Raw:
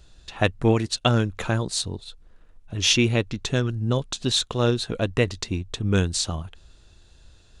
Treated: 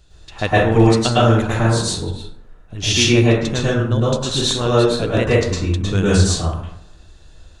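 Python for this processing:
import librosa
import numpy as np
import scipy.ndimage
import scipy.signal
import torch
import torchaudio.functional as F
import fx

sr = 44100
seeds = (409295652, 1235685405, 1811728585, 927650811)

y = fx.rev_plate(x, sr, seeds[0], rt60_s=0.75, hf_ratio=0.45, predelay_ms=95, drr_db=-8.0)
y = F.gain(torch.from_numpy(y), -1.0).numpy()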